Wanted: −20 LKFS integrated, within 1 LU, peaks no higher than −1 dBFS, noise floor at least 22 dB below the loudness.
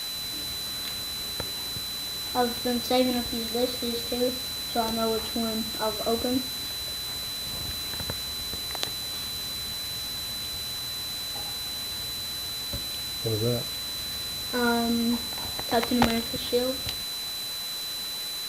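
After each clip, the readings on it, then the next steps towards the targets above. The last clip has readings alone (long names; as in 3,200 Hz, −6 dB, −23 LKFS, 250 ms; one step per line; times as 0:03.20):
interfering tone 4,000 Hz; level of the tone −32 dBFS; background noise floor −34 dBFS; target noise floor −51 dBFS; integrated loudness −28.5 LKFS; sample peak −5.0 dBFS; target loudness −20.0 LKFS
→ notch filter 4,000 Hz, Q 30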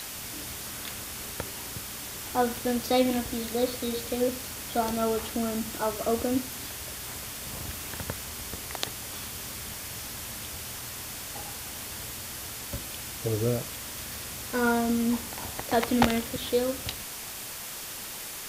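interfering tone none found; background noise floor −39 dBFS; target noise floor −53 dBFS
→ noise reduction from a noise print 14 dB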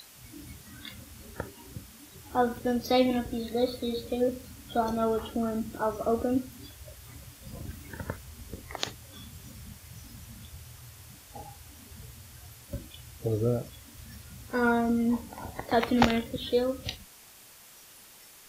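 background noise floor −53 dBFS; integrated loudness −29.5 LKFS; sample peak −6.0 dBFS; target loudness −20.0 LKFS
→ level +9.5 dB
brickwall limiter −1 dBFS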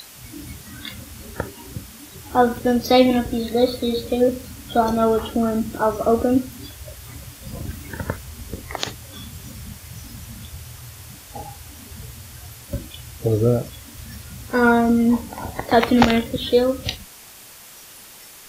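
integrated loudness −20.5 LKFS; sample peak −1.0 dBFS; background noise floor −43 dBFS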